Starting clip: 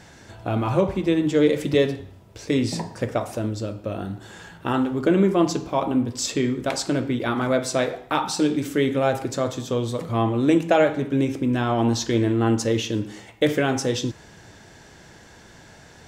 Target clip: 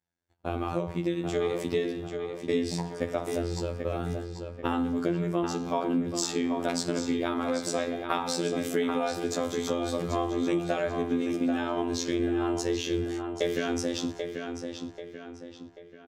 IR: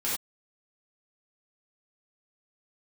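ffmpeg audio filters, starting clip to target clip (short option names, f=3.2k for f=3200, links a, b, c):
-filter_complex "[0:a]agate=range=-40dB:threshold=-37dB:ratio=16:detection=peak,dynaudnorm=f=360:g=21:m=11.5dB,afftfilt=real='hypot(re,im)*cos(PI*b)':imag='0':win_size=2048:overlap=0.75,acompressor=threshold=-25dB:ratio=6,asplit=2[a][b];[b]adelay=787,lowpass=f=4.5k:p=1,volume=-6dB,asplit=2[c][d];[d]adelay=787,lowpass=f=4.5k:p=1,volume=0.44,asplit=2[e][f];[f]adelay=787,lowpass=f=4.5k:p=1,volume=0.44,asplit=2[g][h];[h]adelay=787,lowpass=f=4.5k:p=1,volume=0.44,asplit=2[i][j];[j]adelay=787,lowpass=f=4.5k:p=1,volume=0.44[k];[a][c][e][g][i][k]amix=inputs=6:normalize=0"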